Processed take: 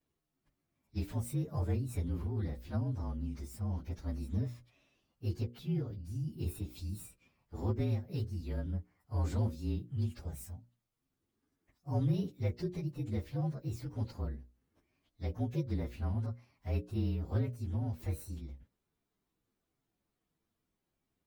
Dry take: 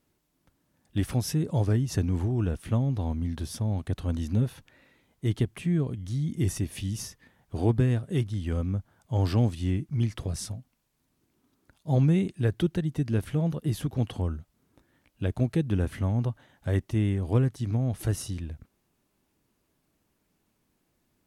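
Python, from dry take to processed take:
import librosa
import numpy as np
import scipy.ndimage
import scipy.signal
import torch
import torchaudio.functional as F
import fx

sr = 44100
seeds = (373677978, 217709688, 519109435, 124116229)

y = fx.partial_stretch(x, sr, pct=115)
y = fx.hum_notches(y, sr, base_hz=60, count=10)
y = F.gain(torch.from_numpy(y), -7.0).numpy()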